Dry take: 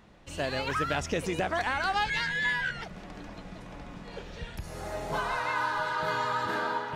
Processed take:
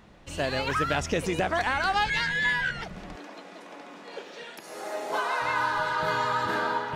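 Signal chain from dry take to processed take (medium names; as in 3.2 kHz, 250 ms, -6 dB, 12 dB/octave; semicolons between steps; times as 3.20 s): 3.16–5.42 s: high-pass 280 Hz 24 dB/octave; trim +3 dB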